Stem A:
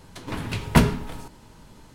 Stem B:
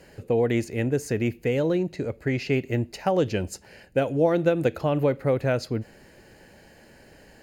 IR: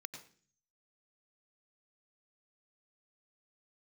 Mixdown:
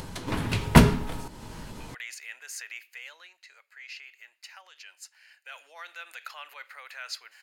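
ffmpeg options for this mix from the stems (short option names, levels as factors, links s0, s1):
-filter_complex "[0:a]acompressor=mode=upward:threshold=0.02:ratio=2.5,volume=1.19[s0];[1:a]equalizer=f=2800:w=0.59:g=3.5,alimiter=limit=0.1:level=0:latency=1:release=38,highpass=f=1200:w=0.5412,highpass=f=1200:w=1.3066,adelay=1500,volume=2.51,afade=t=out:st=2.74:d=0.62:silence=0.398107,afade=t=in:st=5.27:d=0.38:silence=0.375837[s1];[s0][s1]amix=inputs=2:normalize=0"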